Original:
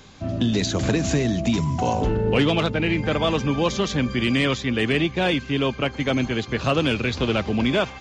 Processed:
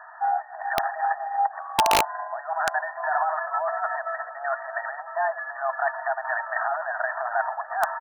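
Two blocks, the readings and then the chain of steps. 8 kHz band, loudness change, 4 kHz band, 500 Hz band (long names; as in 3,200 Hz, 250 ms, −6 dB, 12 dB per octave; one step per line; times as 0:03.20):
−3.5 dB, −4.5 dB, −10.0 dB, −6.0 dB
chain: notch filter 1,000 Hz, Q 15
compressor whose output falls as the input rises −24 dBFS, ratio −0.5
frequency shifter +140 Hz
linear-phase brick-wall band-pass 630–1,900 Hz
echo with shifted repeats 402 ms, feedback 60%, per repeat −36 Hz, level −23 dB
wrap-around overflow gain 19 dB
level +8 dB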